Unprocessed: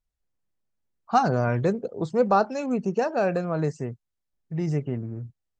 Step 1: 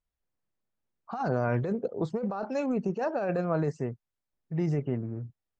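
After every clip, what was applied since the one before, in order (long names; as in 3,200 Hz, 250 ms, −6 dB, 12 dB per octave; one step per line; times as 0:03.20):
low-pass filter 1,300 Hz 6 dB per octave
spectral tilt +1.5 dB per octave
compressor whose output falls as the input rises −28 dBFS, ratio −1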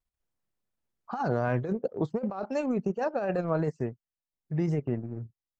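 transient designer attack +2 dB, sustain −10 dB
pitch vibrato 2.8 Hz 71 cents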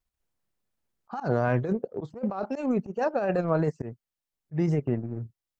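volume swells 102 ms
level +3 dB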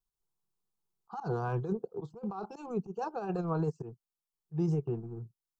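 phaser with its sweep stopped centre 390 Hz, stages 8
level −4 dB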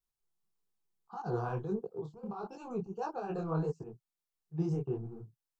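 micro pitch shift up and down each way 55 cents
level +2 dB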